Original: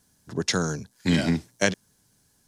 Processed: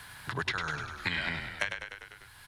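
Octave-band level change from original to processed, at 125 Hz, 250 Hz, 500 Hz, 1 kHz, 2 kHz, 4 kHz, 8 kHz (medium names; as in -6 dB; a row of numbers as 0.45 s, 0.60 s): -13.0 dB, -19.5 dB, -14.5 dB, -1.5 dB, -1.0 dB, -6.0 dB, -17.5 dB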